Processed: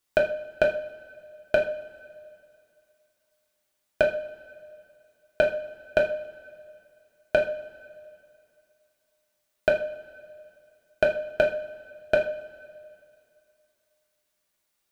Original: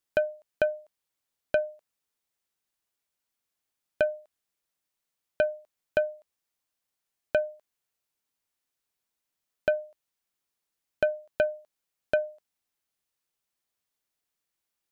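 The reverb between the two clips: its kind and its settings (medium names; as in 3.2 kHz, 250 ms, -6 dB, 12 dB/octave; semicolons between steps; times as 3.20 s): two-slope reverb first 0.4 s, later 2.5 s, from -21 dB, DRR -1 dB; trim +4.5 dB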